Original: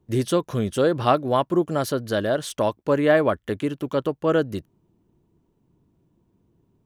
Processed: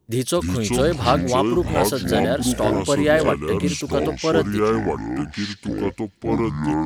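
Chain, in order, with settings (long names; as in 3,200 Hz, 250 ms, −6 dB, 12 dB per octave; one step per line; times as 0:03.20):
high-shelf EQ 3,400 Hz +9 dB
on a send: delay with a high-pass on its return 62 ms, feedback 65%, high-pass 4,200 Hz, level −20 dB
on the sum: delay with pitch and tempo change per echo 246 ms, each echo −6 semitones, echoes 2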